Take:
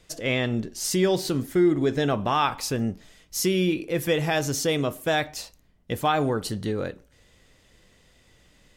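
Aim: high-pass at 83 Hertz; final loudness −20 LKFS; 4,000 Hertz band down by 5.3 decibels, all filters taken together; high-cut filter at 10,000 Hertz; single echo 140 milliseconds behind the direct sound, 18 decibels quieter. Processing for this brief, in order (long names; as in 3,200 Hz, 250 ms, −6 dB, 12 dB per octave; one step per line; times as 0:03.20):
high-pass filter 83 Hz
low-pass filter 10,000 Hz
parametric band 4,000 Hz −7 dB
single-tap delay 140 ms −18 dB
level +5.5 dB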